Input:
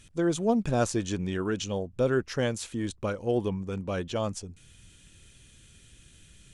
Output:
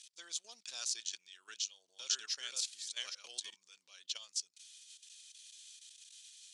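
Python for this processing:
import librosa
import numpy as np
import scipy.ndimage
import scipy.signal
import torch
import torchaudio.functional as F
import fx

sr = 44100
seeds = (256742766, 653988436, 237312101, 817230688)

y = fx.reverse_delay(x, sr, ms=425, wet_db=-1, at=(1.45, 3.56))
y = fx.level_steps(y, sr, step_db=14)
y = fx.ladder_bandpass(y, sr, hz=5400.0, resonance_pct=40)
y = y * librosa.db_to_amplitude(17.5)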